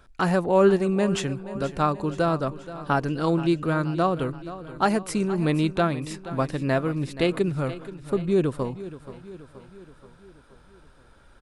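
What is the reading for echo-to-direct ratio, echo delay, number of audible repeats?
−13.5 dB, 477 ms, 4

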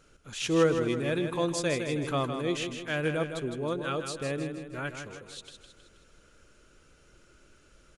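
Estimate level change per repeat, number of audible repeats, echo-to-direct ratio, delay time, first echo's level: −6.0 dB, 5, −6.5 dB, 159 ms, −7.5 dB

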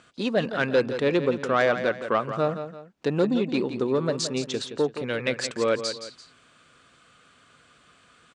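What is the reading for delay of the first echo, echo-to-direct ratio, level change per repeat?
170 ms, −9.5 dB, −8.5 dB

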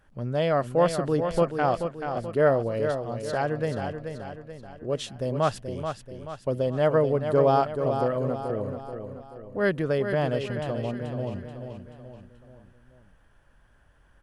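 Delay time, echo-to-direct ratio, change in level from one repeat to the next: 432 ms, −6.5 dB, −6.5 dB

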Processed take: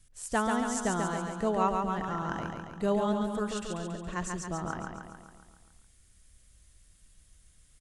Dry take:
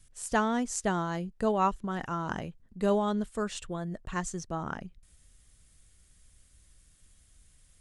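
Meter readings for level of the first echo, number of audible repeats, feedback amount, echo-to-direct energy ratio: −4.0 dB, 7, 58%, −2.0 dB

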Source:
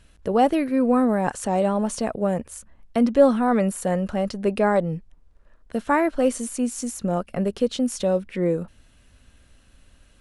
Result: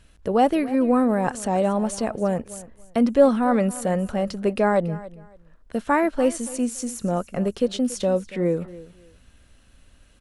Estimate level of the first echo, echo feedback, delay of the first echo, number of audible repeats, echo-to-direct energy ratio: −18.0 dB, 22%, 282 ms, 2, −18.0 dB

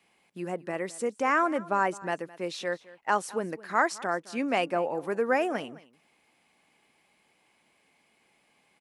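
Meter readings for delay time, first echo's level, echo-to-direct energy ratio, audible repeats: 213 ms, −20.0 dB, −20.0 dB, 1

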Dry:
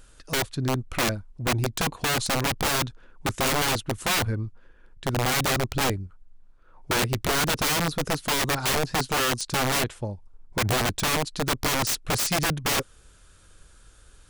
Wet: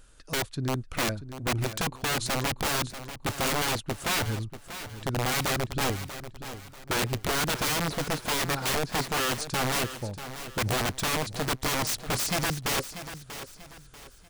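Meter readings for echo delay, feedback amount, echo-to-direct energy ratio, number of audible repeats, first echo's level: 639 ms, 35%, −11.5 dB, 3, −12.0 dB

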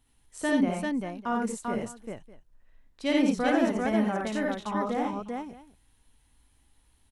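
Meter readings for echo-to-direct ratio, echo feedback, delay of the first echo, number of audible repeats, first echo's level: 2.0 dB, repeats not evenly spaced, 56 ms, 4, −3.0 dB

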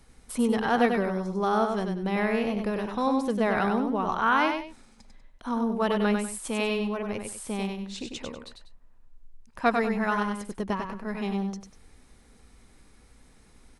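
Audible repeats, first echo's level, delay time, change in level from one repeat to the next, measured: 2, −5.0 dB, 97 ms, −10.5 dB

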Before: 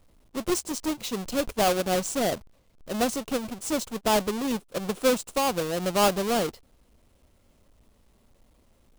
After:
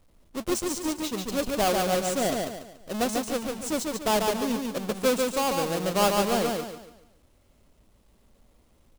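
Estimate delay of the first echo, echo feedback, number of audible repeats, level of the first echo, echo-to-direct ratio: 143 ms, 36%, 4, −3.5 dB, −3.0 dB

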